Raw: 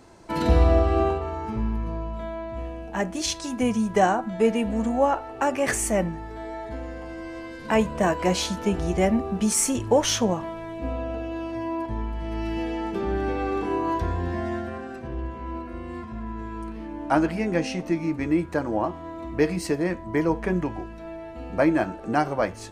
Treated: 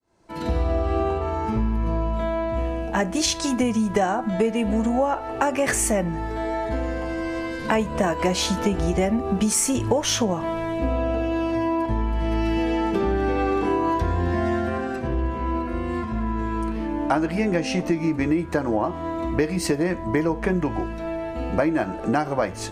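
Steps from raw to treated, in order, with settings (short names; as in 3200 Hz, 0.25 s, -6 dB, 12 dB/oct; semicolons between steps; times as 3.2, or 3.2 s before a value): opening faded in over 1.93 s; compressor 6:1, threshold -27 dBFS, peak gain reduction 12.5 dB; gain +8.5 dB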